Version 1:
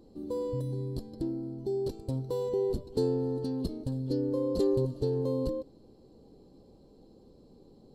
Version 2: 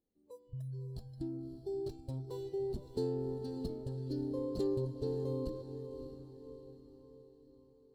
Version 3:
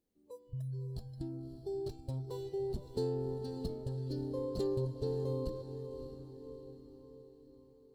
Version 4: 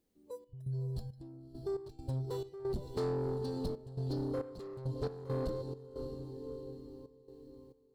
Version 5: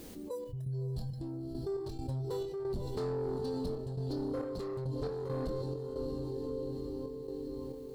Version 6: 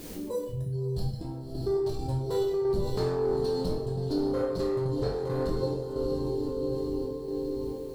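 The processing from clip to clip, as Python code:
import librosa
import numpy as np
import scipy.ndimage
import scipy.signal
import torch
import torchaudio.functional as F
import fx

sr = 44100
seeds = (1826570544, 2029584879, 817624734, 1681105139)

y1 = scipy.ndimage.median_filter(x, 3, mode='constant')
y1 = fx.noise_reduce_blind(y1, sr, reduce_db=25)
y1 = fx.echo_diffused(y1, sr, ms=575, feedback_pct=50, wet_db=-9.5)
y1 = y1 * 10.0 ** (-7.0 / 20.0)
y2 = fx.dynamic_eq(y1, sr, hz=300.0, q=2.1, threshold_db=-52.0, ratio=4.0, max_db=-6)
y2 = y2 * 10.0 ** (2.5 / 20.0)
y3 = 10.0 ** (-34.5 / 20.0) * np.tanh(y2 / 10.0 ** (-34.5 / 20.0))
y3 = fx.step_gate(y3, sr, bpm=68, pattern='xx.xx..x.xx.xxx', floor_db=-12.0, edge_ms=4.5)
y3 = y3 * 10.0 ** (5.0 / 20.0)
y4 = fx.chorus_voices(y3, sr, voices=4, hz=0.36, base_ms=24, depth_ms=3.9, mix_pct=25)
y4 = fx.env_flatten(y4, sr, amount_pct=70)
y5 = fx.rev_plate(y4, sr, seeds[0], rt60_s=0.53, hf_ratio=1.0, predelay_ms=0, drr_db=-1.0)
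y5 = y5 * 10.0 ** (5.0 / 20.0)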